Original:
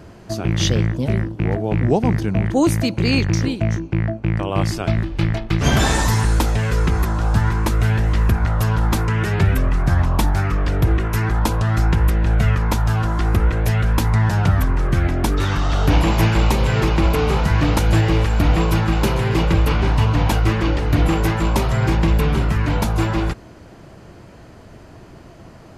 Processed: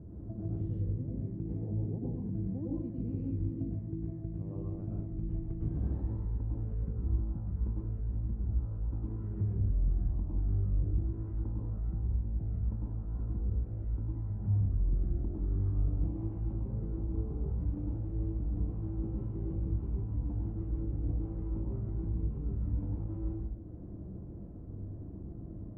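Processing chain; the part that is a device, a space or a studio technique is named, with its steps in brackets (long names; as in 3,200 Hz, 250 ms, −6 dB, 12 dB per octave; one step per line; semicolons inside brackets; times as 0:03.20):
0:16.53–0:17.50: parametric band 2,900 Hz −6 dB 0.99 octaves
television next door (downward compressor 5 to 1, threshold −31 dBFS, peak gain reduction 18.5 dB; low-pass filter 260 Hz 12 dB per octave; convolution reverb RT60 0.65 s, pre-delay 98 ms, DRR −4 dB)
level −5 dB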